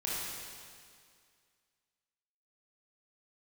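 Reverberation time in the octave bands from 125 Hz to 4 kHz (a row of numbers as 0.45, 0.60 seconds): 2.1, 2.1, 2.1, 2.1, 2.1, 2.1 seconds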